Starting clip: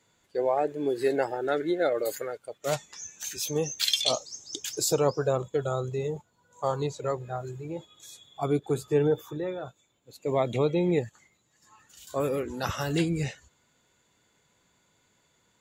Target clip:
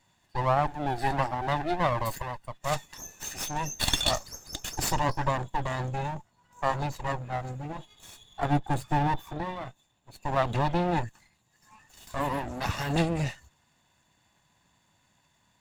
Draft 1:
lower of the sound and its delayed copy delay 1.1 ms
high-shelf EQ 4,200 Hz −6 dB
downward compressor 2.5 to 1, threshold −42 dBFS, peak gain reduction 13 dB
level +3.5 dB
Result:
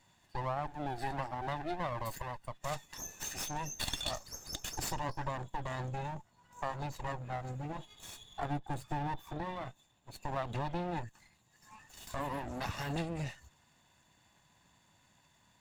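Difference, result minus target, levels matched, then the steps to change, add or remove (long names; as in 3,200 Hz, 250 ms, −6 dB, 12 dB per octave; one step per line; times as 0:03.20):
downward compressor: peak gain reduction +13 dB
remove: downward compressor 2.5 to 1, threshold −42 dBFS, peak gain reduction 13 dB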